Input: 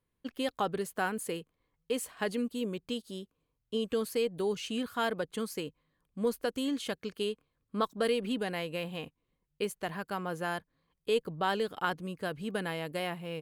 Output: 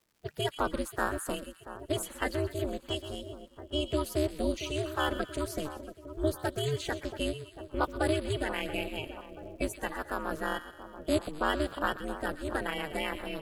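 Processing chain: coarse spectral quantiser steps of 30 dB; two-band feedback delay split 1.3 kHz, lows 681 ms, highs 125 ms, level -12 dB; crackle 420 per s -60 dBFS; ring modulator 150 Hz; trim +4.5 dB

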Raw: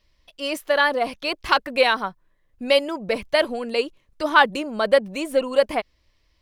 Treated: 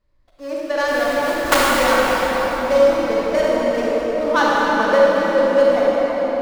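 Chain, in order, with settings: median filter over 15 samples; treble shelf 9.3 kHz -6.5 dB; 0.88–1.74 s: companded quantiser 2-bit; reverberation RT60 6.1 s, pre-delay 32 ms, DRR -7 dB; trim -3 dB

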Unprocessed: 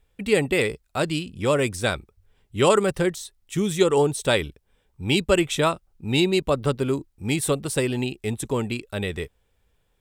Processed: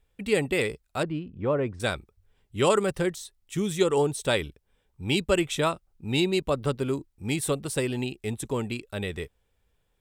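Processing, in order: 1.03–1.80 s: low-pass 1.3 kHz 12 dB/octave; trim -4 dB

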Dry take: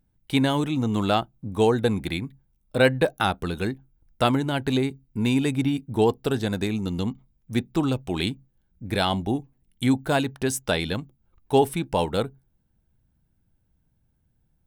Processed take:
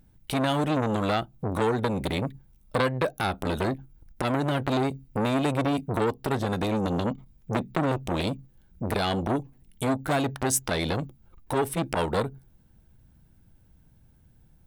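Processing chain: compression 10:1, threshold -27 dBFS, peak gain reduction 14.5 dB; 7.59–8.06 s: peaking EQ 180 Hz +6.5 dB 0.62 oct; loudness maximiser +18 dB; transformer saturation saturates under 1.1 kHz; trim -7.5 dB

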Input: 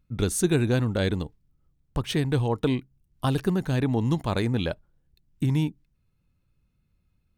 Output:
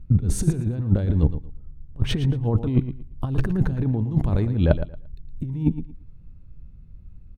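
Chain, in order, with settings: tilt EQ -4 dB/octave; compressor with a negative ratio -20 dBFS, ratio -0.5; on a send: feedback delay 114 ms, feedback 21%, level -12 dB; on the sum: trim +1 dB

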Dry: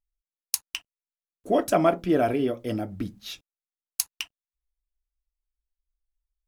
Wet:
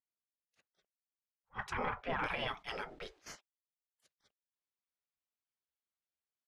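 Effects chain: single-diode clipper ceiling -12.5 dBFS; gate -44 dBFS, range -8 dB; low-pass 1.8 kHz 12 dB/octave, from 2.24 s 3.9 kHz; spectral gate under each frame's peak -20 dB weak; peak limiter -33 dBFS, peak gain reduction 10.5 dB; attacks held to a fixed rise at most 420 dB/s; trim +7 dB

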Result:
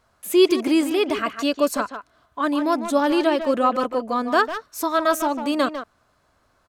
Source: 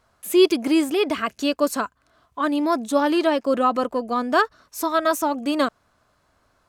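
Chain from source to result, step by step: speakerphone echo 150 ms, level -8 dB

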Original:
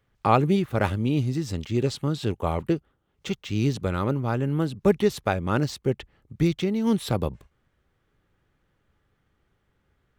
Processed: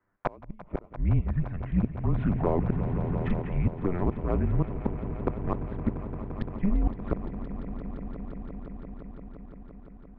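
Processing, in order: mistuned SSB -180 Hz 160–2100 Hz; touch-sensitive flanger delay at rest 10.2 ms, full sweep at -23 dBFS; in parallel at -9 dB: one-sided clip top -25 dBFS; on the sum: inverted gate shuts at -14 dBFS, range -30 dB; on a send: echo with a slow build-up 172 ms, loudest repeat 5, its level -14.5 dB; 2.08–3.42 s: on the sum: level flattener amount 50%

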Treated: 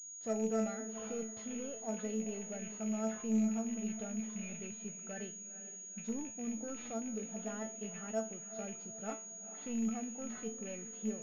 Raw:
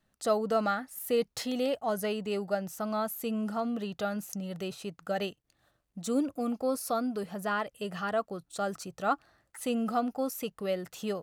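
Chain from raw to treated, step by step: rattle on loud lows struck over -39 dBFS, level -27 dBFS; bass shelf 340 Hz +9 dB; saturation -20.5 dBFS, distortion -17 dB; peaking EQ 1.1 kHz -6 dB 0.54 oct; band-stop 1.1 kHz, Q 29; feedback comb 220 Hz, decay 0.34 s, harmonics all, mix 90%; on a send: echo that smears into a reverb 461 ms, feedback 42%, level -12 dB; on the sum: class-D stage that switches slowly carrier 6.7 kHz

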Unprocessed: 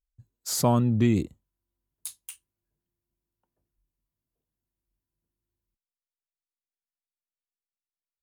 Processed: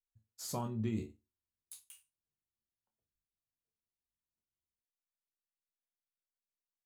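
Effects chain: chord resonator D2 major, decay 0.31 s; tempo 1.2×; trim -2.5 dB

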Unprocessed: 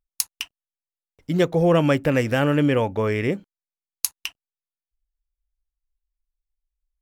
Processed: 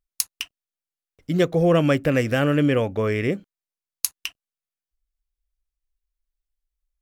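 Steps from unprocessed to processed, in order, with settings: peaking EQ 900 Hz -10 dB 0.21 oct

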